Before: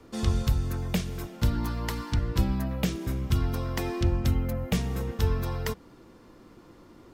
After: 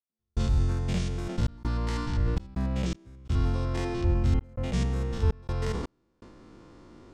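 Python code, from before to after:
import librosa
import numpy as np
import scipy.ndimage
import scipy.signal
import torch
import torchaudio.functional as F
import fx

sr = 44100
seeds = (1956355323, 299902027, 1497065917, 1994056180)

p1 = fx.spec_steps(x, sr, hold_ms=100)
p2 = scipy.signal.sosfilt(scipy.signal.butter(4, 8800.0, 'lowpass', fs=sr, output='sos'), p1)
p3 = fx.low_shelf(p2, sr, hz=120.0, db=4.0)
p4 = fx.rider(p3, sr, range_db=10, speed_s=0.5)
p5 = p3 + (p4 * 10.0 ** (-1.5 / 20.0))
p6 = fx.step_gate(p5, sr, bpm=82, pattern='..xxxxxx.xxxx.xx', floor_db=-60.0, edge_ms=4.5)
p7 = fx.sustainer(p6, sr, db_per_s=38.0)
y = p7 * 10.0 ** (-5.5 / 20.0)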